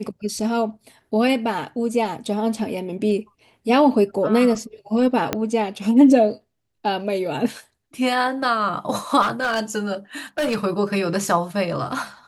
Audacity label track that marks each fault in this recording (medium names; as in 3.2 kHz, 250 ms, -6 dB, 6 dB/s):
5.330000	5.330000	pop -6 dBFS
9.210000	9.600000	clipped -17 dBFS
10.380000	10.570000	clipped -18 dBFS